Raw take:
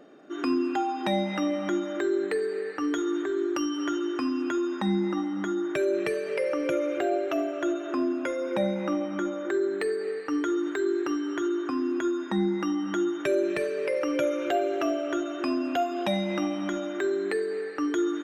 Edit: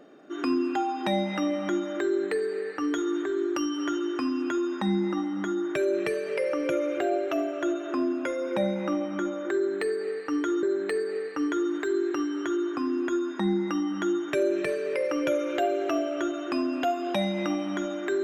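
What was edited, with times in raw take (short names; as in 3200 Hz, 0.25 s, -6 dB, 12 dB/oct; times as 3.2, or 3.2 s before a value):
9.55–10.63 loop, 2 plays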